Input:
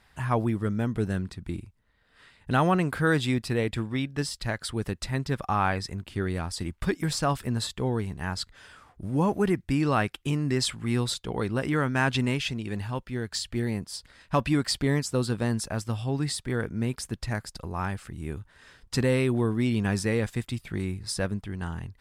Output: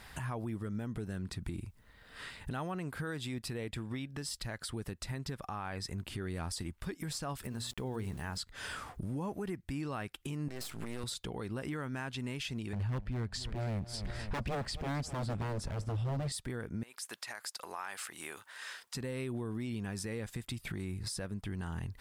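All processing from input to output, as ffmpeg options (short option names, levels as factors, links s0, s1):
-filter_complex "[0:a]asettb=1/sr,asplit=3[s0][s1][s2];[s0]atrim=end=7.444[s3];[s1]atrim=start=7.44:end=8.38,asetpts=PTS-STARTPTS,afade=t=in:d=0.004:c=qsin,afade=t=out:st=0.936:d=0.004:c=qsin,bandreject=f=60:t=h:w=6,bandreject=f=120:t=h:w=6,bandreject=f=180:t=h:w=6,bandreject=f=240:t=h:w=6,bandreject=f=300:t=h:w=6,bandreject=f=360:t=h:w=6,bandreject=f=420:t=h:w=6,bandreject=f=480:t=h:w=6,bandreject=f=540:t=h:w=6,aeval=exprs='val(0)*gte(abs(val(0)),0.00316)':c=same[s4];[s2]atrim=start=8.376[s5];[s3][s4]acrossfade=d=0.004:c1=hsin:c2=qsin[s6];[s6][s5]acrossfade=d=0.004:c1=qsin:c2=hsin,asettb=1/sr,asplit=3[s7][s8][s9];[s7]atrim=end=10.484[s10];[s8]atrim=start=10.48:end=11.04,asetpts=PTS-STARTPTS,afade=t=in:d=0.004:c=qsin,afade=t=out:st=0.556:d=0.004:c=qsin,highpass=f=150:p=1,aeval=exprs='max(val(0),0)':c=same,acompressor=threshold=0.02:ratio=5:attack=3.2:release=140:knee=1:detection=peak[s11];[s9]atrim=start=11.036[s12];[s10][s11]acrossfade=d=0.004:c1=hsin:c2=qsin[s13];[s13][s12]acrossfade=d=0.004:c1=qsin:c2=hsin,asettb=1/sr,asplit=3[s14][s15][s16];[s14]atrim=end=12.734[s17];[s15]atrim=start=12.73:end=16.32,asetpts=PTS-STARTPTS,afade=t=in:d=0.004:c=qsin,afade=t=out:st=3.586:d=0.004:c=qsin,aemphasis=mode=reproduction:type=bsi,aeval=exprs='0.1*(abs(mod(val(0)/0.1+3,4)-2)-1)':c=same,aecho=1:1:260|520|780:0.1|0.046|0.0212,atrim=end_sample=158319[s18];[s16]atrim=start=16.316[s19];[s17][s18]acrossfade=d=0.004:c1=hsin:c2=qsin[s20];[s20][s19]acrossfade=d=0.004:c1=qsin:c2=hsin,asettb=1/sr,asplit=3[s21][s22][s23];[s21]atrim=end=16.834[s24];[s22]atrim=start=16.83:end=18.95,asetpts=PTS-STARTPTS,afade=t=in:d=0.004:c=qsin,afade=t=out:st=2.116:d=0.004:c=qsin,highpass=850,acompressor=threshold=0.00398:ratio=2.5:attack=3.2:release=140:knee=1:detection=peak[s25];[s23]atrim=start=18.946[s26];[s24][s25]acrossfade=d=0.004:c1=hsin:c2=qsin[s27];[s27][s26]acrossfade=d=0.004:c1=qsin:c2=hsin,highshelf=f=8900:g=7,acompressor=threshold=0.01:ratio=8,alimiter=level_in=4.73:limit=0.0631:level=0:latency=1:release=138,volume=0.211,volume=2.66"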